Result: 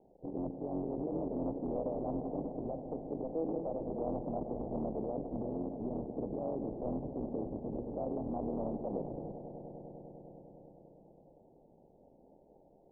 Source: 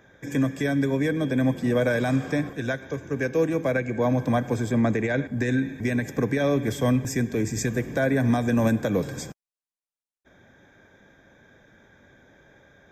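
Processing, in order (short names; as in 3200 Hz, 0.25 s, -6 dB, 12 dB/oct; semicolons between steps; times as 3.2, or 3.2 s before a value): cycle switcher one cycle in 3, muted; limiter -23.5 dBFS, peak gain reduction 11.5 dB; steep low-pass 850 Hz 72 dB/oct; bell 96 Hz -13.5 dB 1.3 oct; swelling echo 0.1 s, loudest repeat 5, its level -16 dB; Doppler distortion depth 0.19 ms; gain -2.5 dB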